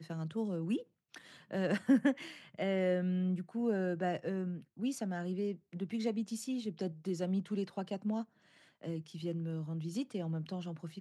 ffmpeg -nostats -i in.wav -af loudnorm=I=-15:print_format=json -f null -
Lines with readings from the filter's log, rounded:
"input_i" : "-37.0",
"input_tp" : "-17.6",
"input_lra" : "6.4",
"input_thresh" : "-47.4",